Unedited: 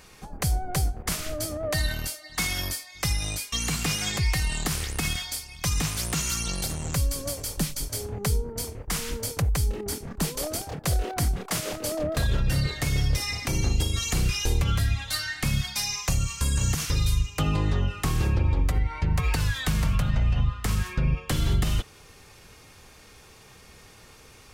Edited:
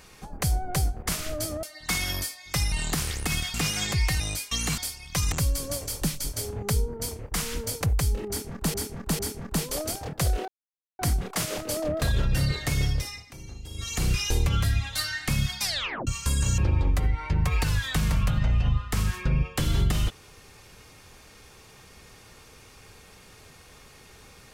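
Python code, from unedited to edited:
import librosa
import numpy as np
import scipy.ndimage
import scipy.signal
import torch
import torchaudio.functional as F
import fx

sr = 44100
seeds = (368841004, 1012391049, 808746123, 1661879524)

y = fx.edit(x, sr, fx.cut(start_s=1.63, length_s=0.49),
    fx.swap(start_s=3.21, length_s=0.58, other_s=4.45, other_length_s=0.82),
    fx.cut(start_s=5.81, length_s=1.07),
    fx.repeat(start_s=9.85, length_s=0.45, count=3),
    fx.insert_silence(at_s=11.14, length_s=0.51),
    fx.fade_down_up(start_s=12.97, length_s=1.27, db=-17.0, fade_s=0.42),
    fx.tape_stop(start_s=15.78, length_s=0.44),
    fx.cut(start_s=16.73, length_s=1.57), tone=tone)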